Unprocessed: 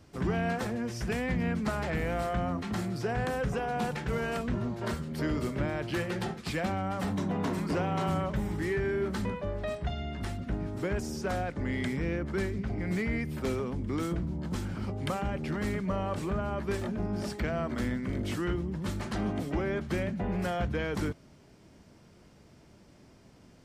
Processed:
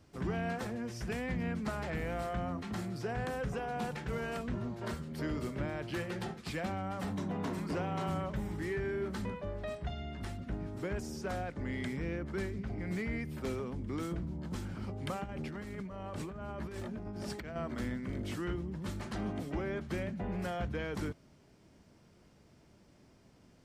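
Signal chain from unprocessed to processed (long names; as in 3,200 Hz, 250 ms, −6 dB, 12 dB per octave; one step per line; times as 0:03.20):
0:15.24–0:17.56: compressor whose output falls as the input rises −36 dBFS, ratio −1
level −5.5 dB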